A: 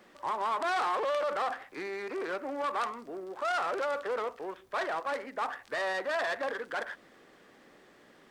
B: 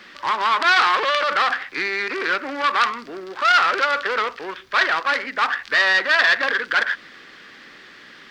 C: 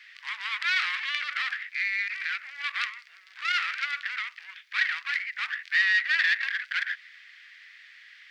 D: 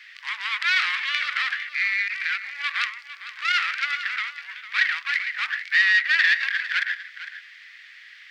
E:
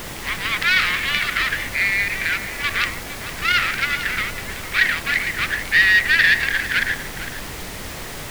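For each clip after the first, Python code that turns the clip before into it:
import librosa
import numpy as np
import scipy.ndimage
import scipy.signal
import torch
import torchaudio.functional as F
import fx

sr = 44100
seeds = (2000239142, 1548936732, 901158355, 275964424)

y1 = fx.curve_eq(x, sr, hz=(260.0, 700.0, 1500.0, 4700.0, 8500.0), db=(0, -5, 10, 12, -3))
y1 = y1 * 10.0 ** (8.5 / 20.0)
y2 = fx.ladder_highpass(y1, sr, hz=1800.0, resonance_pct=55)
y2 = y2 * 10.0 ** (-1.0 / 20.0)
y3 = y2 + 10.0 ** (-13.0 / 20.0) * np.pad(y2, (int(454 * sr / 1000.0), 0))[:len(y2)]
y3 = y3 * 10.0 ** (4.5 / 20.0)
y4 = fx.dmg_noise_colour(y3, sr, seeds[0], colour='pink', level_db=-36.0)
y4 = y4 * 10.0 ** (4.0 / 20.0)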